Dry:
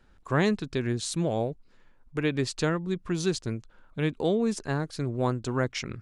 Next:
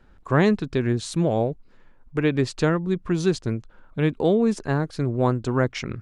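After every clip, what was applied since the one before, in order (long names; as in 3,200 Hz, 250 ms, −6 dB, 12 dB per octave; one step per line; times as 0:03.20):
high-shelf EQ 3,000 Hz −9 dB
level +6 dB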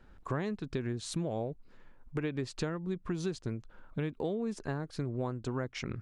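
downward compressor 5 to 1, threshold −29 dBFS, peak gain reduction 14.5 dB
level −3 dB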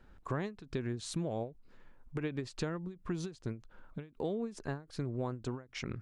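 every ending faded ahead of time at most 190 dB per second
level −1.5 dB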